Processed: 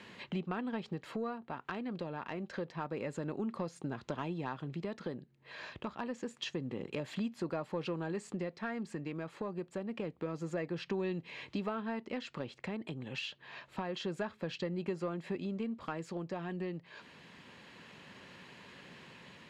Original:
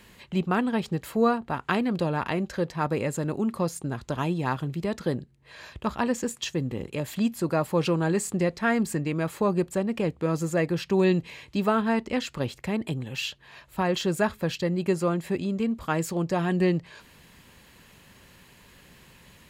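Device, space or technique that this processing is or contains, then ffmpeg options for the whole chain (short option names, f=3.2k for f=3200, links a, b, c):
AM radio: -af "highpass=160,lowpass=4.2k,acompressor=threshold=-37dB:ratio=4,asoftclip=type=tanh:threshold=-24.5dB,tremolo=f=0.27:d=0.29,volume=2dB"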